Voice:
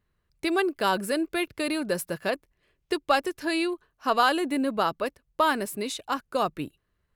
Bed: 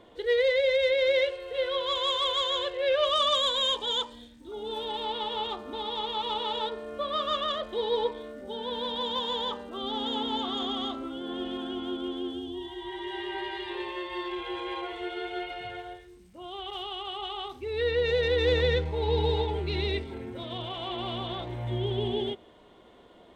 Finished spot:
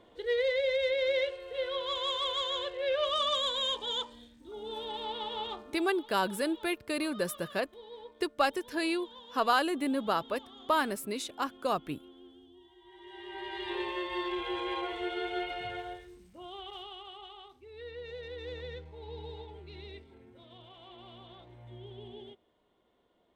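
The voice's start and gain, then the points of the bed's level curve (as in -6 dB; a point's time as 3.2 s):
5.30 s, -4.5 dB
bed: 5.57 s -5 dB
5.89 s -20 dB
12.81 s -20 dB
13.71 s 0 dB
16.07 s 0 dB
17.68 s -17.5 dB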